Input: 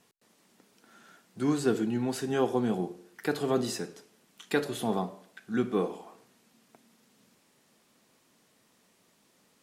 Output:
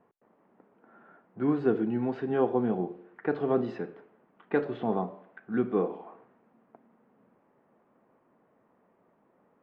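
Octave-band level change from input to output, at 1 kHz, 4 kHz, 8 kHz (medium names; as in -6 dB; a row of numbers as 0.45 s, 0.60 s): +0.5 dB, under -15 dB, under -35 dB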